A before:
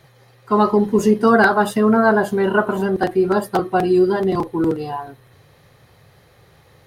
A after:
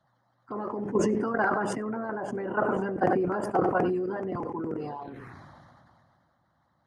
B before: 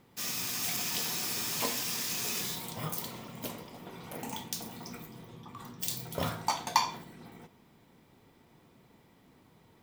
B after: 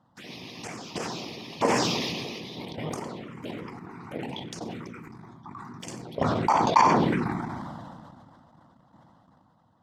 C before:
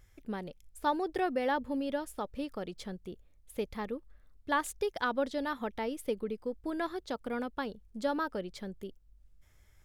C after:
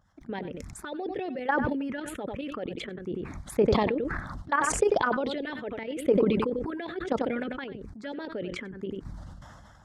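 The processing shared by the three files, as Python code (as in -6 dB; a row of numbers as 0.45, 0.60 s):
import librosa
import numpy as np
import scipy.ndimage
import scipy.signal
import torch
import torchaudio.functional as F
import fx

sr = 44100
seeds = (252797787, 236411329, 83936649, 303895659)

y = scipy.signal.sosfilt(scipy.signal.butter(2, 130.0, 'highpass', fs=sr, output='sos'), x)
y = fx.hpss(y, sr, part='harmonic', gain_db=-14)
y = fx.high_shelf(y, sr, hz=5500.0, db=5.0)
y = fx.level_steps(y, sr, step_db=11)
y = fx.env_phaser(y, sr, low_hz=390.0, high_hz=3800.0, full_db=-35.5)
y = fx.spacing_loss(y, sr, db_at_10k=30)
y = y + 10.0 ** (-18.5 / 20.0) * np.pad(y, (int(94 * sr / 1000.0), 0))[:len(y)]
y = fx.sustainer(y, sr, db_per_s=24.0)
y = y * 10.0 ** (-30 / 20.0) / np.sqrt(np.mean(np.square(y)))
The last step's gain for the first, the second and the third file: +2.0, +17.5, +15.5 dB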